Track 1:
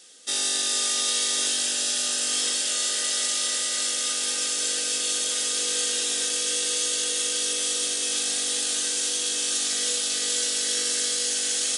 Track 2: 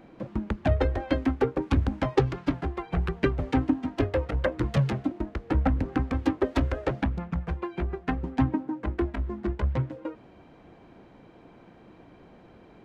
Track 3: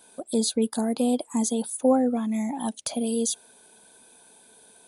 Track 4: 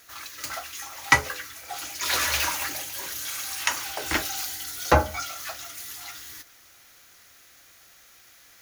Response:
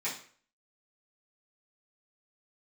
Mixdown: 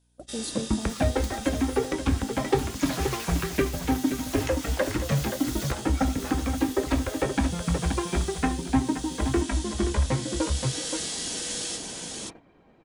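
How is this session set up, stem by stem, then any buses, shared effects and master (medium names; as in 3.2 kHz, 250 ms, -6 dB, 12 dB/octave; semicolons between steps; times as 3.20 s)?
-16.5 dB, 0.00 s, no bus, no send, echo send -3.5 dB, treble shelf 5.2 kHz -3.5 dB
0.0 dB, 0.35 s, no bus, send -10 dB, echo send -8.5 dB, reverb removal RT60 0.55 s
-13.5 dB, 0.00 s, bus A, send -19.5 dB, no echo send, none
-5.0 dB, 0.80 s, bus A, no send, echo send -17 dB, none
bus A: 0.0 dB, hum 60 Hz, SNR 22 dB; compression, threshold -35 dBFS, peak gain reduction 17.5 dB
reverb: on, RT60 0.50 s, pre-delay 3 ms
echo: delay 526 ms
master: gate -48 dBFS, range -16 dB; gain riding 0.5 s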